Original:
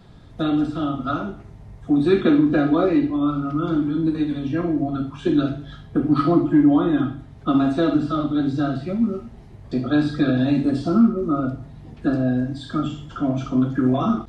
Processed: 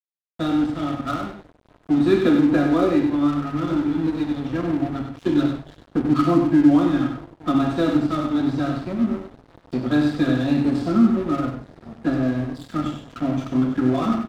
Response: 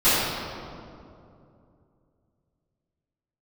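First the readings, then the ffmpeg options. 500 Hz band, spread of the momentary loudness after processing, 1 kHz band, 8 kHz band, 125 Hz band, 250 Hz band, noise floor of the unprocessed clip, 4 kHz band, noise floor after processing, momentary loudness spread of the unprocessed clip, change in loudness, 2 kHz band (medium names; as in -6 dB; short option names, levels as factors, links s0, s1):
-0.5 dB, 11 LU, 0.0 dB, no reading, -1.5 dB, 0.0 dB, -43 dBFS, +0.5 dB, -58 dBFS, 10 LU, -0.5 dB, +0.5 dB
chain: -filter_complex "[0:a]asplit=2[s0][s1];[s1]aecho=0:1:865|1730|2595|3460|4325:0.1|0.058|0.0336|0.0195|0.0113[s2];[s0][s2]amix=inputs=2:normalize=0,aeval=exprs='sgn(val(0))*max(abs(val(0))-0.0211,0)':c=same,asplit=2[s3][s4];[s4]aecho=0:1:97:0.447[s5];[s3][s5]amix=inputs=2:normalize=0"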